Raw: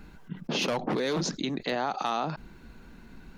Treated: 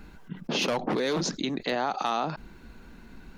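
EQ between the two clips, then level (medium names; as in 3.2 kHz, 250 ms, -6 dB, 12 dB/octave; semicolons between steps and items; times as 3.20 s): peaking EQ 140 Hz -3 dB 0.77 oct; +1.5 dB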